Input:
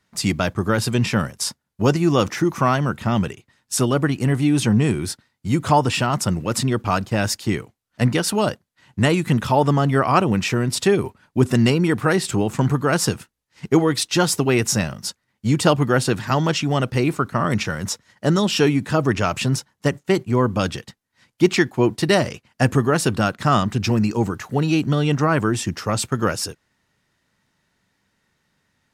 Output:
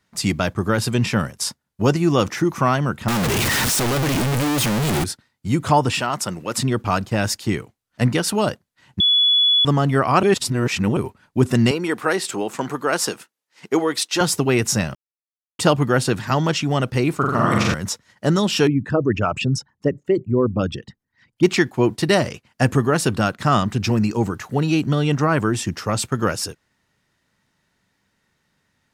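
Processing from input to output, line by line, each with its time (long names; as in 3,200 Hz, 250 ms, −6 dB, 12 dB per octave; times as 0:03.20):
0:03.08–0:05.04: sign of each sample alone
0:06.00–0:06.58: high-pass filter 400 Hz 6 dB per octave
0:09.00–0:09.65: beep over 3,410 Hz −12.5 dBFS
0:10.23–0:10.97: reverse
0:11.71–0:14.21: high-pass filter 340 Hz
0:14.95–0:15.59: silence
0:17.17–0:17.74: flutter between parallel walls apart 7.5 metres, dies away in 1.3 s
0:18.67–0:21.43: spectral envelope exaggerated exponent 2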